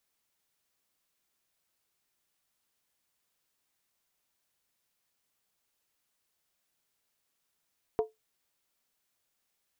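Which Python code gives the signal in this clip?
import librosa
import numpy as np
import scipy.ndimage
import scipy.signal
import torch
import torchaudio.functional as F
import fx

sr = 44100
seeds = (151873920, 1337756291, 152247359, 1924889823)

y = fx.strike_skin(sr, length_s=0.63, level_db=-20.5, hz=438.0, decay_s=0.17, tilt_db=8, modes=5)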